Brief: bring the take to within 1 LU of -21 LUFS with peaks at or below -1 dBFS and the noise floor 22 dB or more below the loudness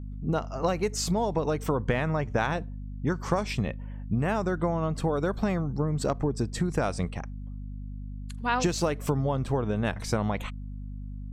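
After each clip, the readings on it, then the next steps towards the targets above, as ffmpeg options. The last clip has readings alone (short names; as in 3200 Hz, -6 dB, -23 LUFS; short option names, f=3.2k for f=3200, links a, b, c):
hum 50 Hz; harmonics up to 250 Hz; hum level -35 dBFS; loudness -29.0 LUFS; peak -10.0 dBFS; loudness target -21.0 LUFS
-> -af "bandreject=f=50:t=h:w=6,bandreject=f=100:t=h:w=6,bandreject=f=150:t=h:w=6,bandreject=f=200:t=h:w=6,bandreject=f=250:t=h:w=6"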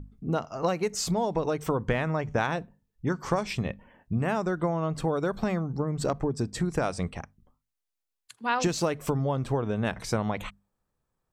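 hum none; loudness -29.5 LUFS; peak -11.5 dBFS; loudness target -21.0 LUFS
-> -af "volume=8.5dB"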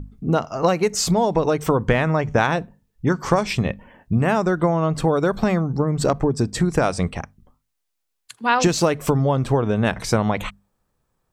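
loudness -21.0 LUFS; peak -3.0 dBFS; noise floor -76 dBFS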